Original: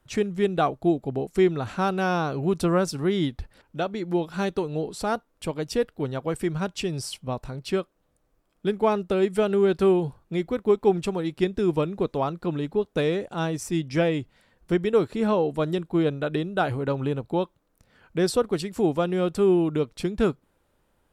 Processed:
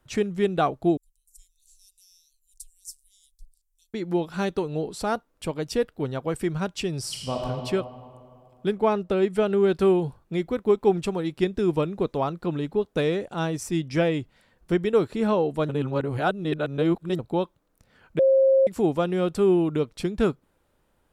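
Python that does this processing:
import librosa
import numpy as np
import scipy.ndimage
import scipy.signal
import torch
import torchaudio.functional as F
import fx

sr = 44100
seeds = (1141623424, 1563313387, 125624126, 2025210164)

y = fx.cheby2_bandstop(x, sr, low_hz=140.0, high_hz=1400.0, order=4, stop_db=80, at=(0.97, 3.94))
y = fx.reverb_throw(y, sr, start_s=7.0, length_s=0.43, rt60_s=2.5, drr_db=-2.0)
y = fx.high_shelf(y, sr, hz=6100.0, db=-7.0, at=(8.73, 9.64))
y = fx.edit(y, sr, fx.reverse_span(start_s=15.69, length_s=1.5),
    fx.bleep(start_s=18.19, length_s=0.48, hz=535.0, db=-14.5), tone=tone)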